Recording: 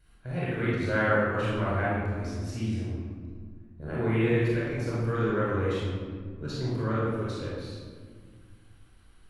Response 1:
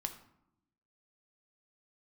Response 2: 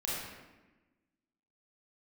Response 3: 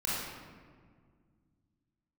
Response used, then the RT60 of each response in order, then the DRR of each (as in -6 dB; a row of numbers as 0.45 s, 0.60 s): 3; 0.80 s, 1.1 s, 1.9 s; 5.5 dB, -6.5 dB, -8.5 dB